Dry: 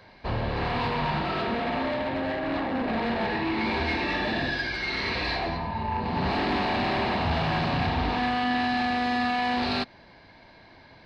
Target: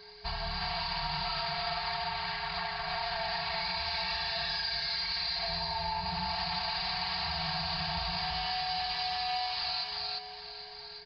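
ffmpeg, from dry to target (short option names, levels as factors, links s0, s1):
-filter_complex "[0:a]afftfilt=real='re*(1-between(b*sr/4096,190,660))':imag='im*(1-between(b*sr/4096,190,660))':win_size=4096:overlap=0.75,lowpass=f=4700:t=q:w=14,aecho=1:1:4.4:0.85,aeval=exprs='val(0)+0.00447*sin(2*PI*420*n/s)':c=same,alimiter=limit=0.158:level=0:latency=1:release=63,asplit=2[s0][s1];[s1]aecho=0:1:346:0.631[s2];[s0][s2]amix=inputs=2:normalize=0,acompressor=threshold=0.0708:ratio=6,asplit=2[s3][s4];[s4]aecho=0:1:809:0.251[s5];[s3][s5]amix=inputs=2:normalize=0,volume=0.447"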